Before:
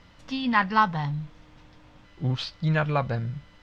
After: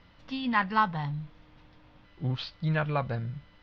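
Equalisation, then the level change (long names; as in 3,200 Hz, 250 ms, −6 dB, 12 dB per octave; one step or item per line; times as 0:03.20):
low-pass filter 4,900 Hz 24 dB per octave
−4.0 dB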